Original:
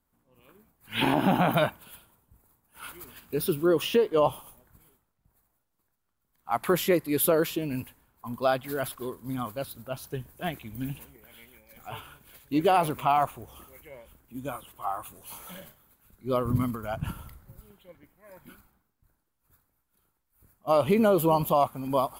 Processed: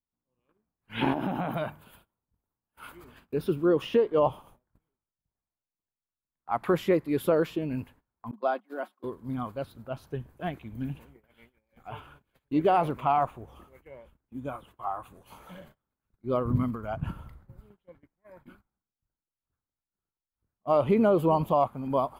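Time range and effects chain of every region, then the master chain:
1.12–2.95 high shelf 8900 Hz +11 dB + notches 50/100/150 Hz + compressor, threshold -25 dBFS
8.31–9.04 gate -35 dBFS, range -21 dB + rippled Chebyshev high-pass 200 Hz, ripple 6 dB + comb 5.5 ms, depth 39%
whole clip: high shelf 7300 Hz -11.5 dB; gate -53 dBFS, range -19 dB; high shelf 2600 Hz -10 dB

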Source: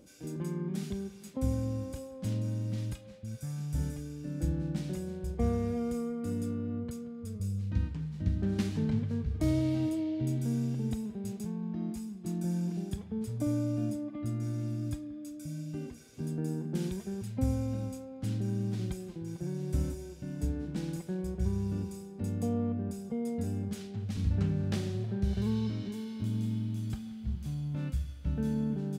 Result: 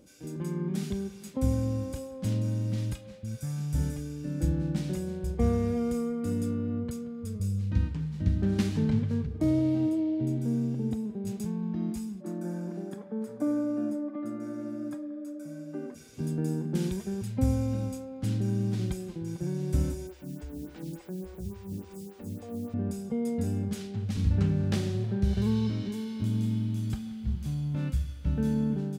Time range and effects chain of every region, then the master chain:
9.26–11.27 HPF 500 Hz 6 dB/oct + tilt shelf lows +9 dB, about 750 Hz
12.2–15.94 HPF 220 Hz 24 dB/oct + resonant high shelf 2100 Hz -9.5 dB, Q 1.5 + whine 580 Hz -52 dBFS
20.07–22.74 compressor 2:1, threshold -39 dBFS + requantised 10-bit, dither triangular + photocell phaser 3.5 Hz
whole clip: notch 680 Hz, Q 18; AGC gain up to 4 dB

